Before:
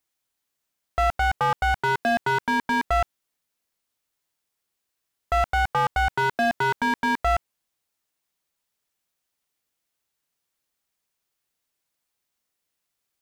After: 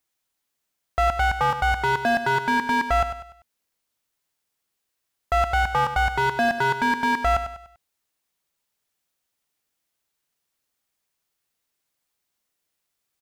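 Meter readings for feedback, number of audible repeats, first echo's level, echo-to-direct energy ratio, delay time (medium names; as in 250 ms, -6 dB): 39%, 4, -10.0 dB, -9.5 dB, 98 ms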